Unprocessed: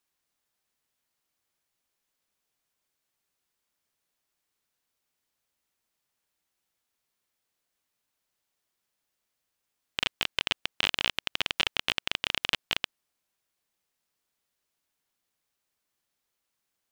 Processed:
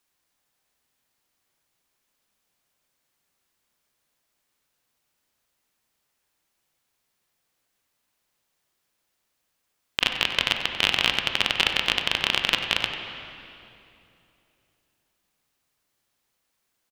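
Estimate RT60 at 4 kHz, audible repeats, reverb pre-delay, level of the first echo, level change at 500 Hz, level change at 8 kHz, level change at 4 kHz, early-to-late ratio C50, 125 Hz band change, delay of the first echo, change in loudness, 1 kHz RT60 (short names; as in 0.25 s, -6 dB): 2.3 s, 1, 20 ms, -12.5 dB, +7.0 dB, +6.0 dB, +6.5 dB, 4.5 dB, +7.5 dB, 94 ms, +6.5 dB, 2.7 s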